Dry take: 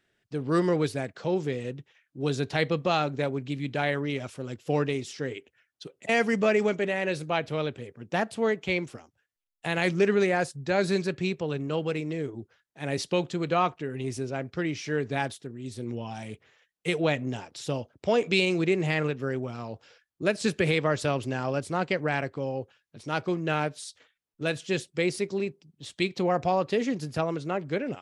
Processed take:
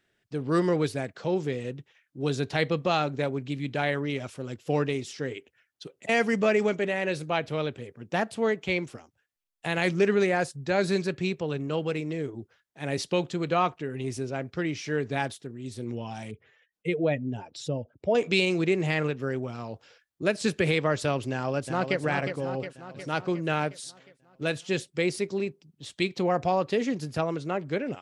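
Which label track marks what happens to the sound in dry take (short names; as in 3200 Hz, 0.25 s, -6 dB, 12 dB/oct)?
16.310000	18.150000	spectral contrast raised exponent 1.6
21.310000	22.000000	echo throw 0.36 s, feedback 60%, level -7 dB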